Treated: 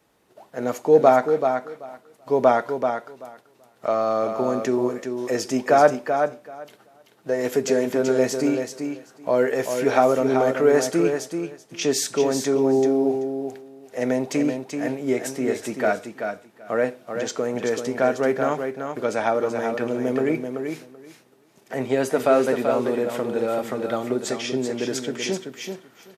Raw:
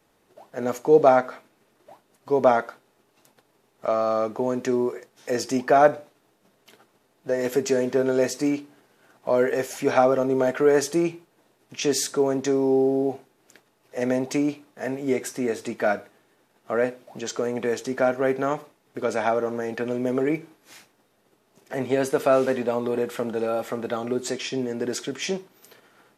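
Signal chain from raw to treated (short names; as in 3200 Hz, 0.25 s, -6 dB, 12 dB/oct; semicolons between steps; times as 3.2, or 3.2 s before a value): HPF 41 Hz; on a send: feedback echo 0.384 s, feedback 15%, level -6.5 dB; on the sum: gain +1 dB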